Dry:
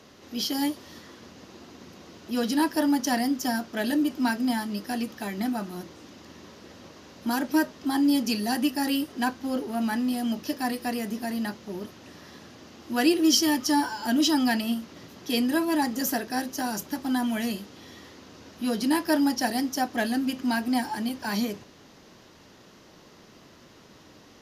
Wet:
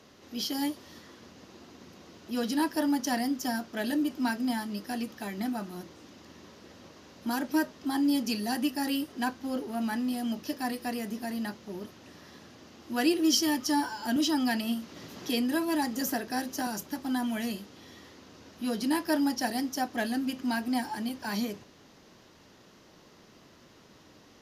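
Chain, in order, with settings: 14.16–16.67 s: three bands compressed up and down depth 40%; trim -4 dB

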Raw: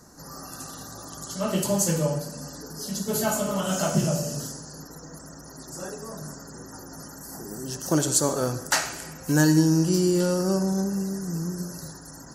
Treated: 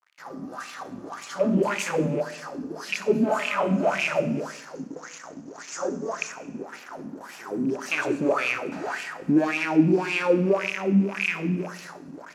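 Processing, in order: rattle on loud lows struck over -32 dBFS, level -24 dBFS; bass shelf 130 Hz -3.5 dB; waveshaping leveller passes 5; 4.75–6.32 s: resonant low-pass 6.6 kHz, resonance Q 4.6; bit crusher 6-bit; wah-wah 1.8 Hz 220–2600 Hz, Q 5.1; Schroeder reverb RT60 0.94 s, combs from 25 ms, DRR 13 dB

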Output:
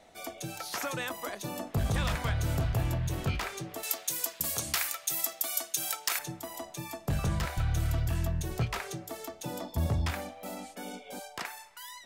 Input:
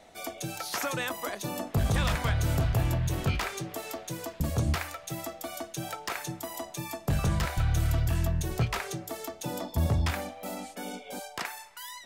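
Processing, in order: 3.83–6.19 s: tilt EQ +4.5 dB/octave; trim -3 dB

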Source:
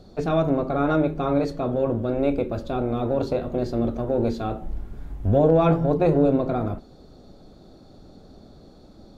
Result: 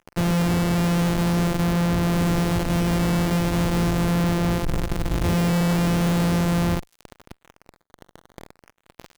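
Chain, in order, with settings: sorted samples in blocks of 256 samples; fuzz box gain 40 dB, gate -40 dBFS; decimation with a swept rate 10×, swing 160% 0.4 Hz; trim -6 dB

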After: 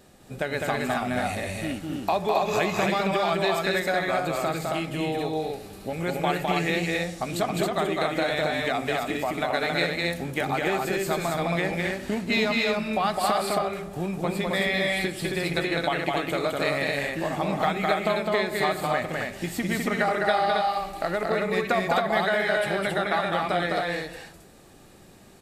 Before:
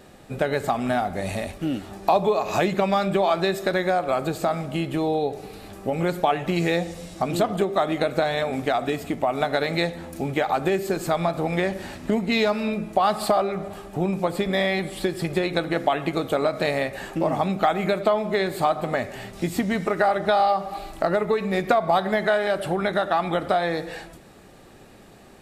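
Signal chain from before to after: tone controls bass +2 dB, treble +6 dB; on a send: loudspeakers at several distances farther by 71 m -3 dB, 93 m -3 dB; on the sum: dynamic bell 2.1 kHz, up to +7 dB, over -39 dBFS, Q 1; trim -7 dB

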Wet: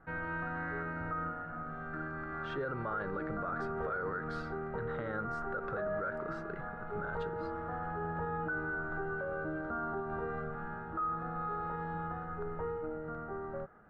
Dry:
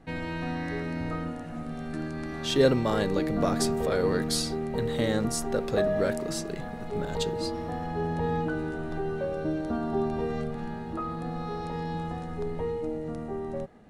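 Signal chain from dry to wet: resonant low-pass 1.4 kHz, resonance Q 10; peak limiter -20.5 dBFS, peak gain reduction 14 dB; peaking EQ 250 Hz -8 dB 0.36 oct; trim -7.5 dB

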